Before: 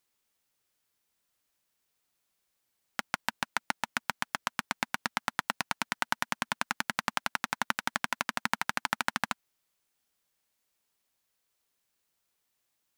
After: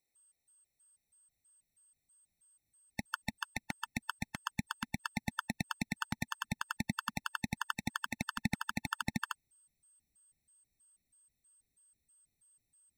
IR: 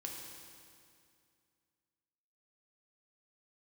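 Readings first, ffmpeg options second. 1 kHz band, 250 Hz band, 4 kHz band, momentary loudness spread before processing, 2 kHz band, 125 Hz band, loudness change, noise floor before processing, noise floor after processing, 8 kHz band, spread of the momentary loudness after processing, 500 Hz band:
−8.5 dB, +2.5 dB, −7.0 dB, 4 LU, −7.5 dB, +6.5 dB, −6.5 dB, −80 dBFS, −85 dBFS, −6.5 dB, 4 LU, −10.5 dB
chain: -af "asubboost=boost=8.5:cutoff=190,aeval=exprs='val(0)+0.000794*sin(2*PI*8300*n/s)':channel_layout=same,afftfilt=real='re*gt(sin(2*PI*3.1*pts/sr)*(1-2*mod(floor(b*sr/1024/890),2)),0)':imag='im*gt(sin(2*PI*3.1*pts/sr)*(1-2*mod(floor(b*sr/1024/890),2)),0)':win_size=1024:overlap=0.75,volume=-3.5dB"

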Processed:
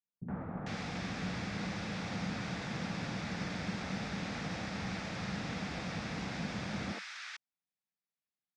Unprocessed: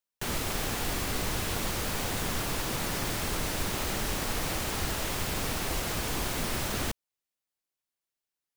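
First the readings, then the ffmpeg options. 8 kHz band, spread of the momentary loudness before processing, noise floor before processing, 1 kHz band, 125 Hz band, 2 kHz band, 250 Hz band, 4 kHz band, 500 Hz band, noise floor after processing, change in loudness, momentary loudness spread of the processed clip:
−18.0 dB, 0 LU, below −85 dBFS, −7.5 dB, −4.0 dB, −5.5 dB, −1.0 dB, −10.0 dB, −8.5 dB, below −85 dBFS, −8.0 dB, 3 LU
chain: -filter_complex "[0:a]highpass=120,equalizer=frequency=190:width_type=q:width=4:gain=10,equalizer=frequency=390:width_type=q:width=4:gain=-9,equalizer=frequency=600:width_type=q:width=4:gain=-4,equalizer=frequency=1000:width_type=q:width=4:gain=-6,equalizer=frequency=3000:width_type=q:width=4:gain=-9,equalizer=frequency=4200:width_type=q:width=4:gain=-6,lowpass=frequency=4700:width=0.5412,lowpass=frequency=4700:width=1.3066,acrossover=split=300|1300[link_01][link_02][link_03];[link_02]adelay=70[link_04];[link_03]adelay=450[link_05];[link_01][link_04][link_05]amix=inputs=3:normalize=0,volume=-2.5dB"

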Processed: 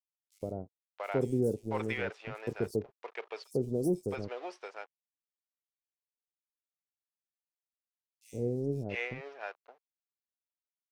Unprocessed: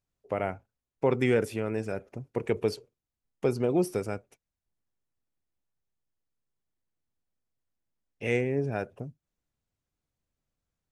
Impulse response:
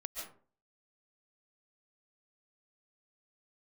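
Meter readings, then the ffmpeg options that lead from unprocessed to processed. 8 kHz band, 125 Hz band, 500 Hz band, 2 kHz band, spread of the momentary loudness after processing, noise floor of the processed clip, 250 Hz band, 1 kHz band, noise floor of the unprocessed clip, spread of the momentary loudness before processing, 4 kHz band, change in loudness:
−6.0 dB, −3.5 dB, −5.0 dB, −3.0 dB, 14 LU, below −85 dBFS, −4.0 dB, −4.5 dB, below −85 dBFS, 14 LU, −4.5 dB, −5.5 dB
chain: -filter_complex "[0:a]aeval=exprs='sgn(val(0))*max(abs(val(0))-0.00562,0)':channel_layout=same,acrossover=split=590|5400[link_01][link_02][link_03];[link_01]adelay=110[link_04];[link_02]adelay=680[link_05];[link_04][link_05][link_03]amix=inputs=3:normalize=0,volume=-2.5dB"

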